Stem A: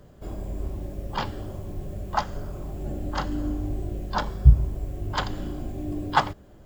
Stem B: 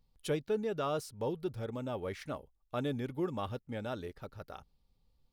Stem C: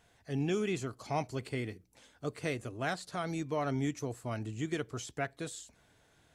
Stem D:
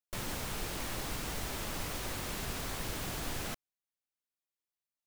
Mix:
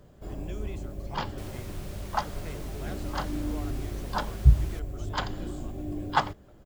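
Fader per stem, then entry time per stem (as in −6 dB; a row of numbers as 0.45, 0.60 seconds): −3.5, −16.5, −10.5, −9.0 decibels; 0.00, 2.25, 0.00, 1.25 seconds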